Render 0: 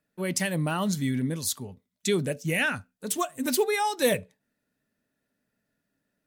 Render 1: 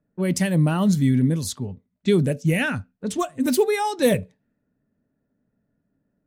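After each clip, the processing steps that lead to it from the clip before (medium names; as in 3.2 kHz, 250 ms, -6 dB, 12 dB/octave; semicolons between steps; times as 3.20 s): bass shelf 410 Hz +11.5 dB; level-controlled noise filter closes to 1.3 kHz, open at -19 dBFS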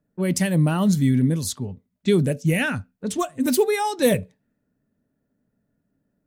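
treble shelf 7.9 kHz +4 dB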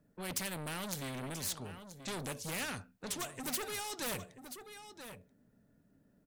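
saturation -21.5 dBFS, distortion -9 dB; delay 982 ms -20 dB; spectrum-flattening compressor 2:1; trim -1 dB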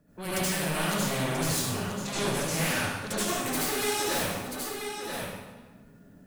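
compression, threshold -40 dBFS, peak gain reduction 8.5 dB; reverberation RT60 1.3 s, pre-delay 68 ms, DRR -10.5 dB; trim +5 dB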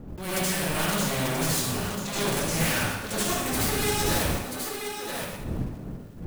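block-companded coder 3-bit; wind noise 200 Hz -37 dBFS; attacks held to a fixed rise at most 140 dB/s; trim +1.5 dB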